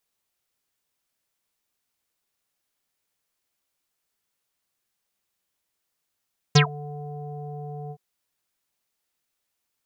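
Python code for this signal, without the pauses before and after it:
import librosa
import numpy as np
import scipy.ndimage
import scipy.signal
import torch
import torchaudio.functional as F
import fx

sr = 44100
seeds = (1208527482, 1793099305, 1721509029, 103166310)

y = fx.sub_voice(sr, note=50, wave='square', cutoff_hz=660.0, q=11.0, env_oct=3.5, env_s=0.12, attack_ms=9.9, decay_s=0.1, sustain_db=-24.0, release_s=0.06, note_s=1.36, slope=24)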